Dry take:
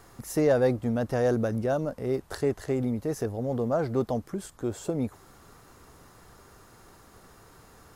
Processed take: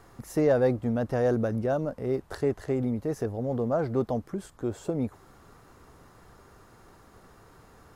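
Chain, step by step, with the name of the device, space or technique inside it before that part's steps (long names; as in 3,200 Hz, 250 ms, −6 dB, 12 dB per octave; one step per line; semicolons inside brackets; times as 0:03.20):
behind a face mask (high-shelf EQ 3,400 Hz −7.5 dB)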